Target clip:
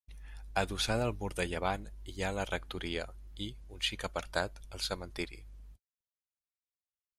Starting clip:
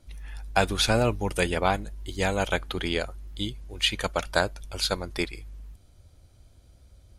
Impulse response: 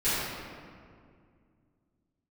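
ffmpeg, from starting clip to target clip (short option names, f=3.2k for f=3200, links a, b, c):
-af "agate=range=-57dB:threshold=-44dB:ratio=16:detection=peak,volume=-9dB"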